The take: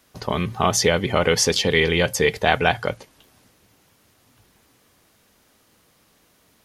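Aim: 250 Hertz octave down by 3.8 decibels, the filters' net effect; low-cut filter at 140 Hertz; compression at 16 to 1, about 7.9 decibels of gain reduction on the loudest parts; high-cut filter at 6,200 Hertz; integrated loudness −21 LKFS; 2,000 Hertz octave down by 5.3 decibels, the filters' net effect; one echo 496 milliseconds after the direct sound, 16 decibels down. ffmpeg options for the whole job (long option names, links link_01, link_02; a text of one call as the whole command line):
ffmpeg -i in.wav -af "highpass=140,lowpass=6200,equalizer=frequency=250:width_type=o:gain=-4.5,equalizer=frequency=2000:width_type=o:gain=-6.5,acompressor=threshold=-23dB:ratio=16,aecho=1:1:496:0.158,volume=8dB" out.wav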